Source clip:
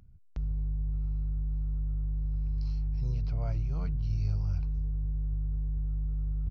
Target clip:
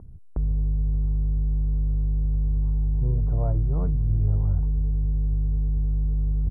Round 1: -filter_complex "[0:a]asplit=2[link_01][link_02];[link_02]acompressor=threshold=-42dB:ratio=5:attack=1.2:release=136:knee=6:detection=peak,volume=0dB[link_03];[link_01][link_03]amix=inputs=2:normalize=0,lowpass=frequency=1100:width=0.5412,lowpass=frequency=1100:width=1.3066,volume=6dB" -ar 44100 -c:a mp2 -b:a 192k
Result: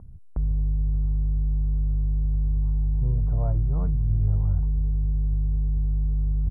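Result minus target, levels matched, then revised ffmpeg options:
500 Hz band −3.5 dB
-filter_complex "[0:a]asplit=2[link_01][link_02];[link_02]acompressor=threshold=-42dB:ratio=5:attack=1.2:release=136:knee=6:detection=peak,volume=0dB[link_03];[link_01][link_03]amix=inputs=2:normalize=0,lowpass=frequency=1100:width=0.5412,lowpass=frequency=1100:width=1.3066,equalizer=frequency=380:width_type=o:width=1.2:gain=5.5,volume=6dB" -ar 44100 -c:a mp2 -b:a 192k

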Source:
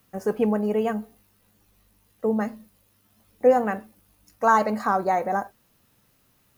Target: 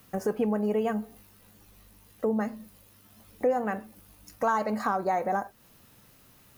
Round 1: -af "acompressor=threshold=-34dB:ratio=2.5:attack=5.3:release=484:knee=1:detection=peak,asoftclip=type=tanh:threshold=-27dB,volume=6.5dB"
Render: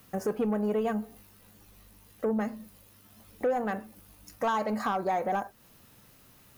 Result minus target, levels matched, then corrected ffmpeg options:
soft clipping: distortion +19 dB
-af "acompressor=threshold=-34dB:ratio=2.5:attack=5.3:release=484:knee=1:detection=peak,asoftclip=type=tanh:threshold=-15.5dB,volume=6.5dB"

